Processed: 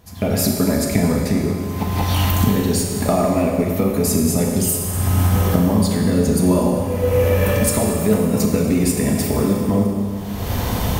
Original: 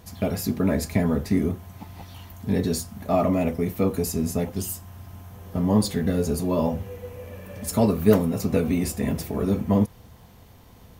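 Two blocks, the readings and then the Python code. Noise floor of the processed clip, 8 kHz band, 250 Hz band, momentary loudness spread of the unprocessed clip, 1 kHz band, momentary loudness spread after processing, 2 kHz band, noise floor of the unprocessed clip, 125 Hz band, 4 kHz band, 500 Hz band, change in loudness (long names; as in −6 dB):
−25 dBFS, +12.0 dB, +6.0 dB, 18 LU, +7.5 dB, 5 LU, +9.5 dB, −50 dBFS, +9.0 dB, +10.0 dB, +6.0 dB, +6.0 dB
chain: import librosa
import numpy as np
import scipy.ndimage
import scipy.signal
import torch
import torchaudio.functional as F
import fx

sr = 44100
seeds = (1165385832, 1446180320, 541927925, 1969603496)

y = fx.recorder_agc(x, sr, target_db=-8.0, rise_db_per_s=40.0, max_gain_db=30)
y = fx.dynamic_eq(y, sr, hz=8600.0, q=4.1, threshold_db=-40.0, ratio=4.0, max_db=5)
y = fx.rev_schroeder(y, sr, rt60_s=2.3, comb_ms=30, drr_db=1.5)
y = y * 10.0 ** (-2.5 / 20.0)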